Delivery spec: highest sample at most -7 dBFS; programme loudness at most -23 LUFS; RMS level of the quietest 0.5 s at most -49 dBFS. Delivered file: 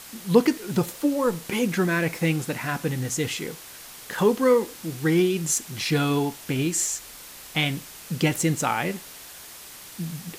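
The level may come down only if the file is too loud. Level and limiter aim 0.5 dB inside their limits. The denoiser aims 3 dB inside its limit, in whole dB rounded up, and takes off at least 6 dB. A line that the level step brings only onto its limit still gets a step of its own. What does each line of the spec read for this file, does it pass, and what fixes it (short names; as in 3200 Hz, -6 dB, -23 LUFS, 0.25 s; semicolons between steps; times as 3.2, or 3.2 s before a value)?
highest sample -4.5 dBFS: fail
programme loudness -24.5 LUFS: OK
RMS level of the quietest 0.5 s -43 dBFS: fail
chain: denoiser 9 dB, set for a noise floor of -43 dBFS; limiter -7.5 dBFS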